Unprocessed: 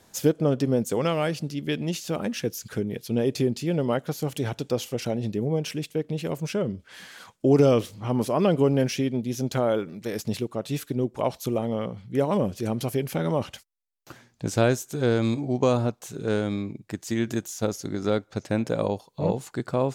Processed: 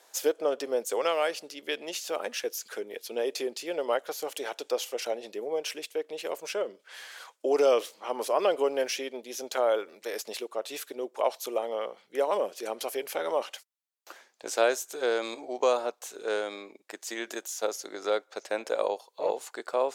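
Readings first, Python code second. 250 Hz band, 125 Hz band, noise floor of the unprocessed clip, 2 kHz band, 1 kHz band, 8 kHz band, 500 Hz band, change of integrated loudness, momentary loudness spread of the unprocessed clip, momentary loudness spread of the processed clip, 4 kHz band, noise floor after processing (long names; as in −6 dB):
−16.0 dB, below −35 dB, −61 dBFS, 0.0 dB, 0.0 dB, 0.0 dB, −2.5 dB, −4.5 dB, 8 LU, 10 LU, 0.0 dB, −68 dBFS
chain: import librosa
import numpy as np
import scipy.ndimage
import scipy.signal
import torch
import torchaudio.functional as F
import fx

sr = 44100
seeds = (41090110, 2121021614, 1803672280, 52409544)

y = scipy.signal.sosfilt(scipy.signal.butter(4, 450.0, 'highpass', fs=sr, output='sos'), x)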